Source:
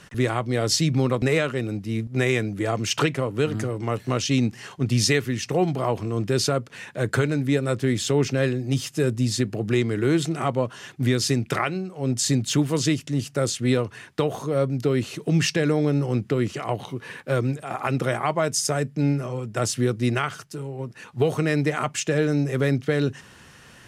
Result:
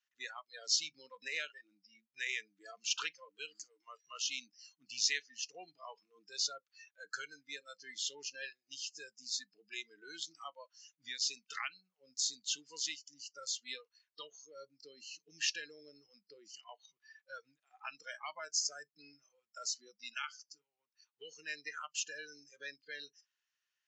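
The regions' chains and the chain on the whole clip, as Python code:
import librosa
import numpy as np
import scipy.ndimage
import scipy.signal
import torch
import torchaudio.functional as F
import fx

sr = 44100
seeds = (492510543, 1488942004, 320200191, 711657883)

y = fx.chain(x, sr, fx.highpass(hz=150.0, slope=6),
    fx.high_shelf(hz=7700.0, db=9.5), at=(3.45, 4.01))
y = scipy.signal.sosfilt(scipy.signal.butter(16, 7100.0, 'lowpass', fs=sr, output='sos'), y)
y = fx.noise_reduce_blind(y, sr, reduce_db=27)
y = scipy.signal.sosfilt(scipy.signal.bessel(2, 2300.0, 'highpass', norm='mag', fs=sr, output='sos'), y)
y = y * 10.0 ** (-7.0 / 20.0)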